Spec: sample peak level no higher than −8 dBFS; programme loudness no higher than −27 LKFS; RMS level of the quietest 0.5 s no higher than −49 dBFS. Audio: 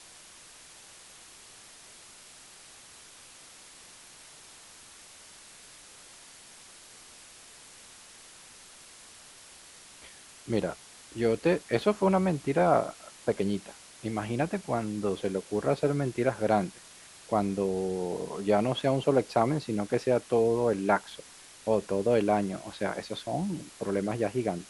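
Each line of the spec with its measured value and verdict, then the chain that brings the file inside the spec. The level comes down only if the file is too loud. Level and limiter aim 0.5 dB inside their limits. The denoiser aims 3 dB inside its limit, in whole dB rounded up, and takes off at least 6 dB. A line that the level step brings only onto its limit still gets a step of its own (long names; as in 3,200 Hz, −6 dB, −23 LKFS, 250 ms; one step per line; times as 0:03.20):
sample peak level −10.0 dBFS: in spec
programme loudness −29.0 LKFS: in spec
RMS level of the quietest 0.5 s −52 dBFS: in spec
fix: no processing needed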